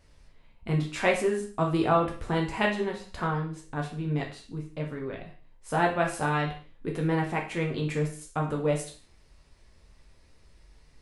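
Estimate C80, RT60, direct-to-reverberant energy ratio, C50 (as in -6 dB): 13.0 dB, 0.45 s, 0.0 dB, 8.0 dB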